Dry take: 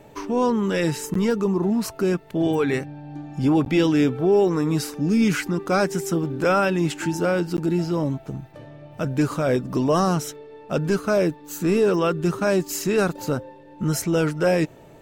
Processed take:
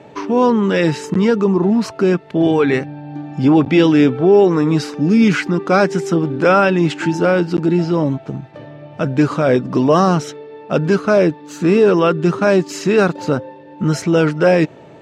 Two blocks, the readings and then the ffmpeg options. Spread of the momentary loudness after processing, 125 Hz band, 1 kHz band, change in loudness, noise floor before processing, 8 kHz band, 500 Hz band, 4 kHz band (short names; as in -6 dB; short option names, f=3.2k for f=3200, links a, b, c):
9 LU, +6.5 dB, +7.5 dB, +7.0 dB, -47 dBFS, -1.0 dB, +7.5 dB, +5.5 dB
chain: -af "highpass=120,lowpass=4.6k,volume=7.5dB"